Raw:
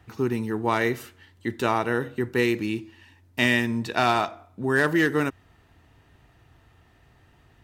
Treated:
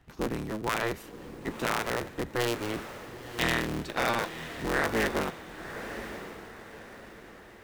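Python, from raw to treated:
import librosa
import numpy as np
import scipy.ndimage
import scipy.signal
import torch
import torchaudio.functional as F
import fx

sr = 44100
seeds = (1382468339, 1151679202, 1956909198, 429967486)

y = fx.cycle_switch(x, sr, every=3, mode='inverted')
y = fx.echo_diffused(y, sr, ms=1012, feedback_pct=42, wet_db=-10.5)
y = F.gain(torch.from_numpy(y), -6.5).numpy()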